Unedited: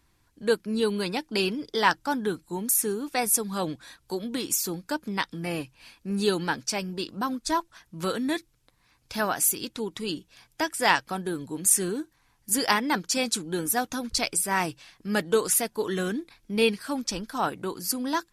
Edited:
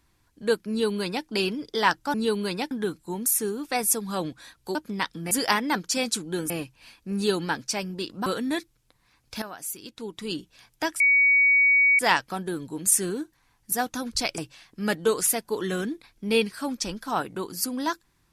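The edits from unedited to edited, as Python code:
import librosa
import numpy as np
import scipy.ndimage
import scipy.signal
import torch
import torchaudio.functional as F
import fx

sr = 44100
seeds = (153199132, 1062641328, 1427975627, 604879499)

y = fx.edit(x, sr, fx.duplicate(start_s=0.69, length_s=0.57, to_s=2.14),
    fx.cut(start_s=4.18, length_s=0.75),
    fx.cut(start_s=7.25, length_s=0.79),
    fx.fade_in_from(start_s=9.2, length_s=0.9, curve='qua', floor_db=-13.0),
    fx.insert_tone(at_s=10.78, length_s=0.99, hz=2250.0, db=-15.5),
    fx.move(start_s=12.51, length_s=1.19, to_s=5.49),
    fx.cut(start_s=14.36, length_s=0.29), tone=tone)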